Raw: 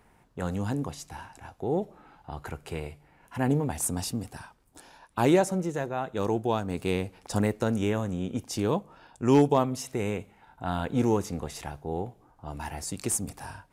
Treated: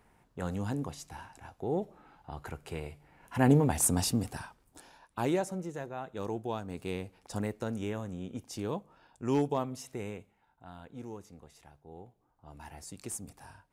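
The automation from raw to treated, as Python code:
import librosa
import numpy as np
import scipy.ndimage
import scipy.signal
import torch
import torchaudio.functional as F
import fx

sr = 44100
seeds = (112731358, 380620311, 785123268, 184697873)

y = fx.gain(x, sr, db=fx.line((2.83, -4.0), (3.48, 2.5), (4.31, 2.5), (5.31, -8.5), (9.98, -8.5), (10.72, -19.0), (11.7, -19.0), (12.73, -11.0)))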